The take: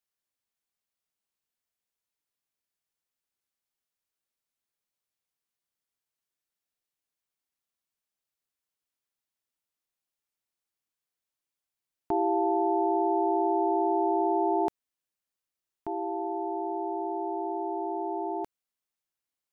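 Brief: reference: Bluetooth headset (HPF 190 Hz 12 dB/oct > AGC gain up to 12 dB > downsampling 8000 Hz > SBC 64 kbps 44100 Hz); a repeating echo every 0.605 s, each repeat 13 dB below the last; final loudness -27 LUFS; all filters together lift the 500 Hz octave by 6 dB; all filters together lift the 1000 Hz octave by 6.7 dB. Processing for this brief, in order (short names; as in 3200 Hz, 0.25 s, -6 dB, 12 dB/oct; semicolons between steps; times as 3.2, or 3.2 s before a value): HPF 190 Hz 12 dB/oct; bell 500 Hz +8.5 dB; bell 1000 Hz +5 dB; feedback echo 0.605 s, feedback 22%, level -13 dB; AGC gain up to 12 dB; downsampling 8000 Hz; gain -9.5 dB; SBC 64 kbps 44100 Hz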